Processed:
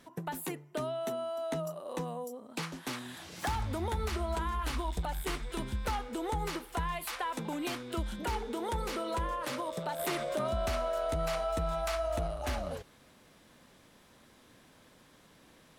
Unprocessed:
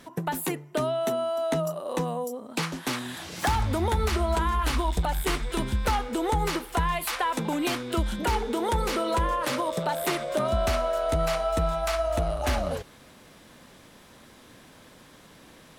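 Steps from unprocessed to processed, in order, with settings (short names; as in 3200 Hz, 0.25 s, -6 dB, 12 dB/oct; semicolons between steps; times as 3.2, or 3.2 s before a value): 9.99–12.27 fast leveller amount 50%; gain -8.5 dB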